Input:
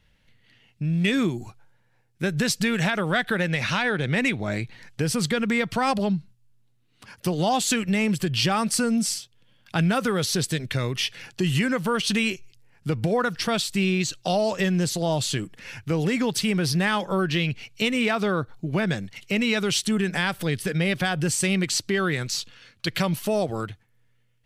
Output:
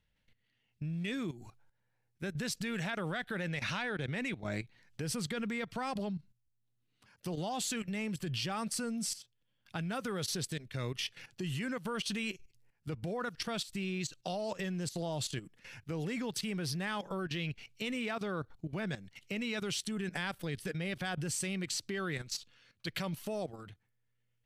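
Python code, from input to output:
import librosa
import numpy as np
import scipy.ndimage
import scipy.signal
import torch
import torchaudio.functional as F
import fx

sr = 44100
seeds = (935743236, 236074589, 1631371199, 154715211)

y = fx.level_steps(x, sr, step_db=14)
y = F.gain(torch.from_numpy(y), -8.0).numpy()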